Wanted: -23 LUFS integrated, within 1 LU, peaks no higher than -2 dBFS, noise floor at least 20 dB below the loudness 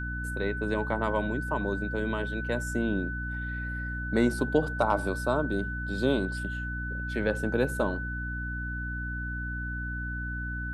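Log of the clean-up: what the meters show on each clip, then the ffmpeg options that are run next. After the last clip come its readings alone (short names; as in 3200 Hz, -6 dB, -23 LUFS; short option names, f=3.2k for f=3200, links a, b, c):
hum 60 Hz; harmonics up to 300 Hz; hum level -33 dBFS; steady tone 1500 Hz; tone level -35 dBFS; loudness -30.5 LUFS; peak -11.0 dBFS; loudness target -23.0 LUFS
-> -af "bandreject=f=60:t=h:w=4,bandreject=f=120:t=h:w=4,bandreject=f=180:t=h:w=4,bandreject=f=240:t=h:w=4,bandreject=f=300:t=h:w=4"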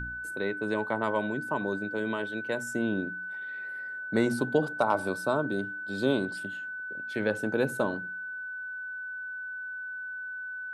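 hum none; steady tone 1500 Hz; tone level -35 dBFS
-> -af "bandreject=f=1.5k:w=30"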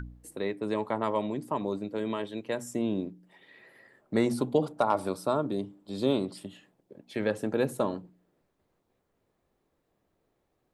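steady tone none; loudness -31.0 LUFS; peak -12.0 dBFS; loudness target -23.0 LUFS
-> -af "volume=8dB"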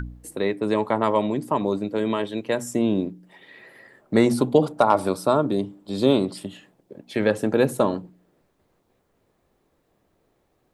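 loudness -23.0 LUFS; peak -4.0 dBFS; noise floor -69 dBFS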